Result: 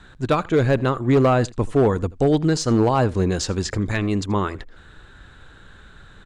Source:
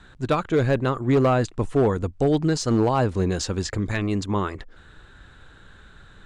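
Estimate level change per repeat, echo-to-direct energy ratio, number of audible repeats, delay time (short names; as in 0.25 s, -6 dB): no steady repeat, -23.0 dB, 1, 81 ms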